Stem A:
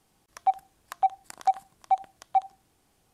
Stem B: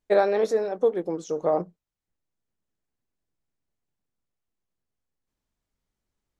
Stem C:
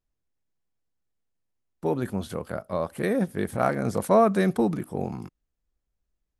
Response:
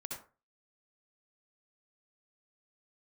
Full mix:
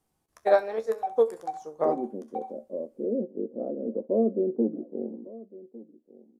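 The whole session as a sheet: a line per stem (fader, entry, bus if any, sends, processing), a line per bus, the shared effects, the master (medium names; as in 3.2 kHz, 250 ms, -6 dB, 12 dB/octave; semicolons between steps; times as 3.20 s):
-4.0 dB, 0.00 s, send -19 dB, no echo send, auto duck -23 dB, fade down 1.95 s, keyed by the third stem
0.0 dB, 0.35 s, send -17.5 dB, no echo send, bass shelf 470 Hz -11 dB; upward expansion 2.5:1, over -34 dBFS
-10.5 dB, 0.00 s, no send, echo send -19.5 dB, Chebyshev band-pass 230–550 Hz, order 3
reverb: on, RT60 0.35 s, pre-delay 57 ms
echo: delay 1154 ms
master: peaking EQ 3.2 kHz -6 dB 2.2 oct; level rider gain up to 13.5 dB; feedback comb 75 Hz, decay 0.16 s, harmonics all, mix 70%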